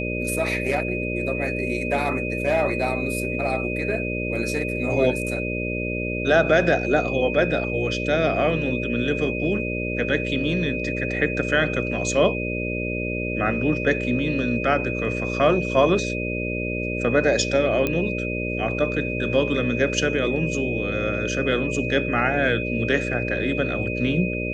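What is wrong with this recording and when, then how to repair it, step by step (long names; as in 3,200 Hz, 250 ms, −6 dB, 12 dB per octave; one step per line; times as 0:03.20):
mains buzz 60 Hz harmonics 10 −28 dBFS
whistle 2,500 Hz −29 dBFS
0:17.87: click −10 dBFS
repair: click removal
notch filter 2,500 Hz, Q 30
hum removal 60 Hz, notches 10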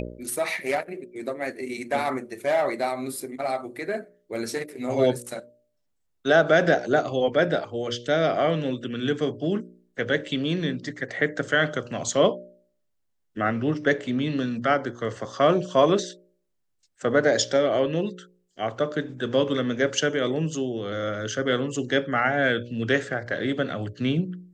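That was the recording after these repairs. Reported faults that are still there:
none of them is left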